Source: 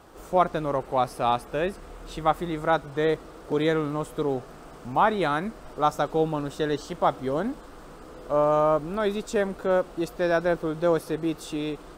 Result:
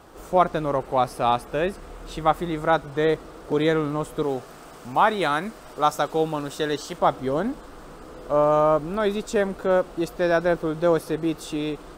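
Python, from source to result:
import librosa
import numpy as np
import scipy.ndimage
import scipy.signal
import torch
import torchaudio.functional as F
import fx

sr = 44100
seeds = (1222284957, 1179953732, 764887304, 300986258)

y = fx.tilt_eq(x, sr, slope=1.5, at=(4.23, 6.99))
y = F.gain(torch.from_numpy(y), 2.5).numpy()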